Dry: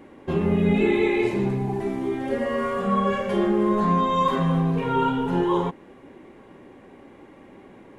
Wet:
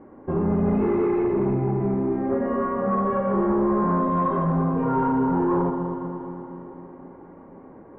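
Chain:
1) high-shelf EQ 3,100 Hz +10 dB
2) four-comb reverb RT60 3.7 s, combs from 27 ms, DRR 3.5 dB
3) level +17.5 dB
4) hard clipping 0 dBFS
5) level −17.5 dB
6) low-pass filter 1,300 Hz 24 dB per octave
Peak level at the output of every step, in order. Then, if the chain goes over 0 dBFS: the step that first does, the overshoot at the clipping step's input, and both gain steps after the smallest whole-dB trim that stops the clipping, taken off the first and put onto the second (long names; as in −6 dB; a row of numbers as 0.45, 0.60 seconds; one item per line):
−8.5, −8.0, +9.5, 0.0, −17.5, −15.5 dBFS
step 3, 9.5 dB
step 3 +7.5 dB, step 5 −7.5 dB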